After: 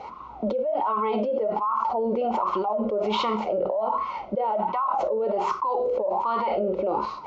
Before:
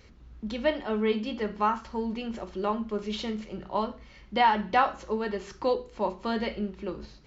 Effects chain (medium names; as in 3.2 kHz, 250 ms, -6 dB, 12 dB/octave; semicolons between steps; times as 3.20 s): wah-wah 1.3 Hz 520–1100 Hz, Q 16; Butterworth band-stop 1.7 kHz, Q 3.3; level flattener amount 100%; trim +1.5 dB